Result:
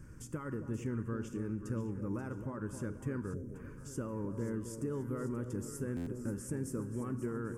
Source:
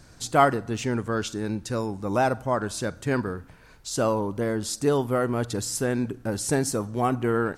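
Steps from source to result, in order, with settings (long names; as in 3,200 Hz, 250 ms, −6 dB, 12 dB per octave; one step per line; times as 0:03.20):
brickwall limiter −17 dBFS, peak gain reduction 11 dB
on a send at −15.5 dB: convolution reverb RT60 2.1 s, pre-delay 3 ms
on the sum: downward compressor 2 to 1, threshold −41 dBFS, peak gain reduction 11 dB
high-shelf EQ 4,700 Hz −6.5 dB
phaser with its sweep stopped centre 1,700 Hz, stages 4
delay that swaps between a low-pass and a high-pass 266 ms, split 960 Hz, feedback 69%, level −8 dB
gain on a spectral selection 0:03.34–0:03.55, 700–5,200 Hz −16 dB
drawn EQ curve 620 Hz 0 dB, 2,100 Hz −10 dB, 11,000 Hz −2 dB
buffer that repeats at 0:05.96, samples 512, times 8
level +1.5 dB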